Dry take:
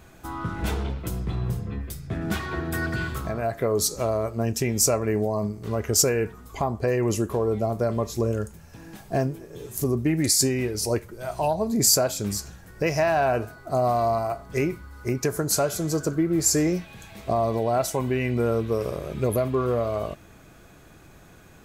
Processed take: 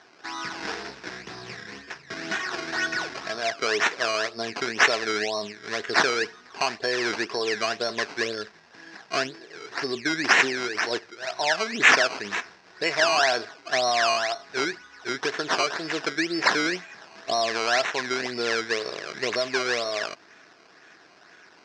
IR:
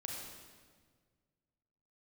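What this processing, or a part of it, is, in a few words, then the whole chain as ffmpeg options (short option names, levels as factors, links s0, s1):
circuit-bent sampling toy: -af "acrusher=samples=17:mix=1:aa=0.000001:lfo=1:lforange=17:lforate=2,highpass=550,equalizer=f=550:t=q:w=4:g=-9,equalizer=f=850:t=q:w=4:g=-5,equalizer=f=1200:t=q:w=4:g=-4,equalizer=f=1700:t=q:w=4:g=6,equalizer=f=3200:t=q:w=4:g=-5,equalizer=f=5300:t=q:w=4:g=7,lowpass=f=5600:w=0.5412,lowpass=f=5600:w=1.3066,volume=1.68"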